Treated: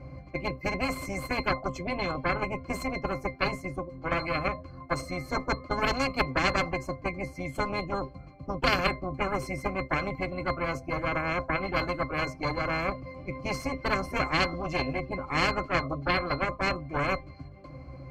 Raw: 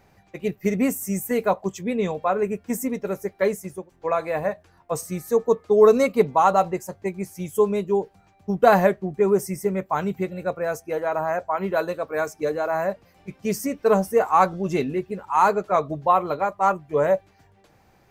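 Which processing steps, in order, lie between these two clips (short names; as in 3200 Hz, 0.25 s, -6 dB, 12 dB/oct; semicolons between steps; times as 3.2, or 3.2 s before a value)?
added harmonics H 3 -14 dB, 4 -11 dB, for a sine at -2.5 dBFS; octave resonator C, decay 0.13 s; spectral compressor 4:1; gain +5.5 dB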